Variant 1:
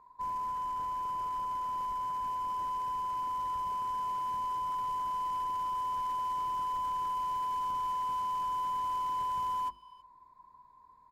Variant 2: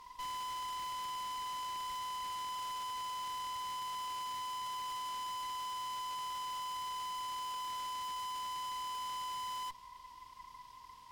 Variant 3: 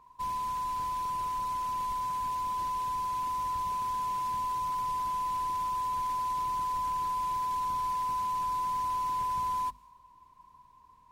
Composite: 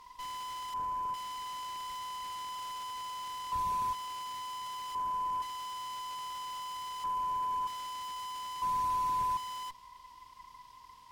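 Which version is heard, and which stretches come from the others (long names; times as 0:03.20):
2
0:00.74–0:01.14: punch in from 1
0:03.52–0:03.93: punch in from 3
0:04.95–0:05.42: punch in from 1
0:07.04–0:07.67: punch in from 1
0:08.62–0:09.37: punch in from 3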